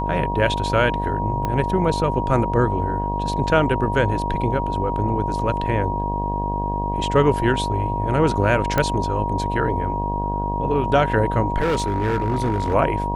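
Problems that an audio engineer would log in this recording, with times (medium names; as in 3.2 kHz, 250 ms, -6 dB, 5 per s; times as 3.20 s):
buzz 50 Hz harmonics 21 -26 dBFS
whine 950 Hz -25 dBFS
1.45 s: pop -11 dBFS
8.78 s: pop -6 dBFS
11.60–12.75 s: clipped -16.5 dBFS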